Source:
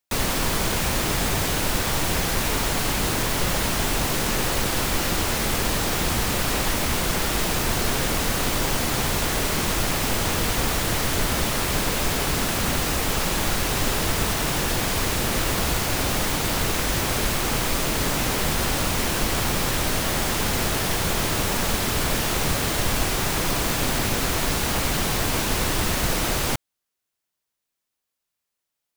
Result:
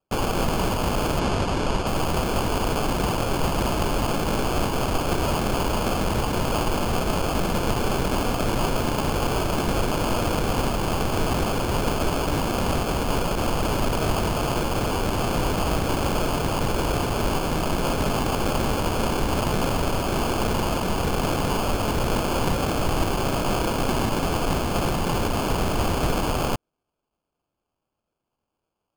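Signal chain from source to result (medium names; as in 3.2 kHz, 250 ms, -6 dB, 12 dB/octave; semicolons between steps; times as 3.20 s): sample-and-hold 23×; 1.19–1.87 s: low-pass 7.5 kHz 12 dB/octave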